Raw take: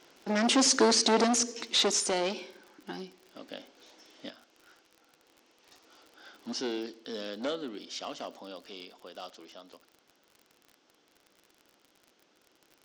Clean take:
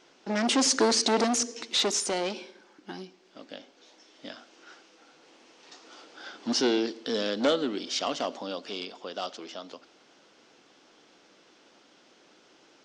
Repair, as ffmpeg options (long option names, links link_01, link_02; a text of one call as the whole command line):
ffmpeg -i in.wav -af "adeclick=threshold=4,asetnsamples=nb_out_samples=441:pad=0,asendcmd='4.3 volume volume 9dB',volume=0dB" out.wav